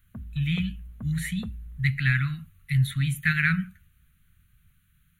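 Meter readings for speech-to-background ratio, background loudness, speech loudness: 15.5 dB, −42.5 LKFS, −27.0 LKFS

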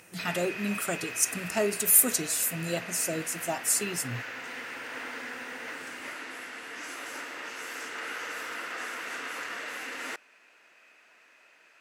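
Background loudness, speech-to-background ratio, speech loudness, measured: −37.5 LKFS, 11.0 dB, −26.5 LKFS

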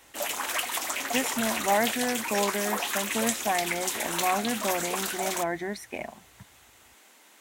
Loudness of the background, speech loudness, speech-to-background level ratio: −29.0 LKFS, −30.5 LKFS, −1.5 dB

